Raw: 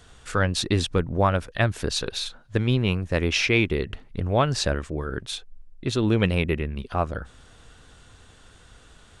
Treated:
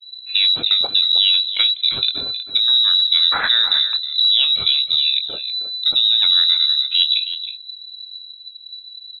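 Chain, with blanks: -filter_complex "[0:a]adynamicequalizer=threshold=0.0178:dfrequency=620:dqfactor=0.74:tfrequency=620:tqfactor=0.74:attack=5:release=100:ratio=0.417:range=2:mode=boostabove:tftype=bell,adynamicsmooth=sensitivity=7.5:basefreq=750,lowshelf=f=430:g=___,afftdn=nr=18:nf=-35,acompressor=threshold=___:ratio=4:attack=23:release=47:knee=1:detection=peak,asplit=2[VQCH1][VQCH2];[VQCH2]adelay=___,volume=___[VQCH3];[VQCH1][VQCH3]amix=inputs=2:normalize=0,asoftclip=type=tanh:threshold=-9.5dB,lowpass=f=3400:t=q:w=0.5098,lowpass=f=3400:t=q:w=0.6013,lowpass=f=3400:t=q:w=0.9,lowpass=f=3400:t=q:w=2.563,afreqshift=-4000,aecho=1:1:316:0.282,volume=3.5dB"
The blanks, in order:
11.5, -20dB, 23, -10.5dB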